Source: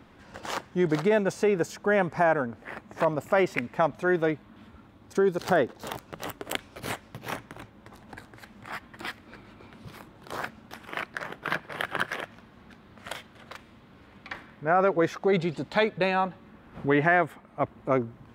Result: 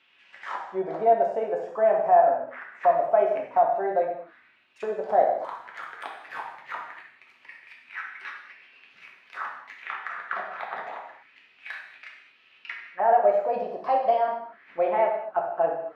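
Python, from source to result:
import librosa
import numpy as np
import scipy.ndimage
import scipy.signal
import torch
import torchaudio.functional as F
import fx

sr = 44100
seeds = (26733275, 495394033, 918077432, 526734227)

y = fx.speed_glide(x, sr, from_pct=104, to_pct=126)
y = fx.auto_wah(y, sr, base_hz=670.0, top_hz=3000.0, q=4.6, full_db=-26.5, direction='down')
y = fx.rev_gated(y, sr, seeds[0], gate_ms=270, shape='falling', drr_db=-1.5)
y = F.gain(torch.from_numpy(y), 5.0).numpy()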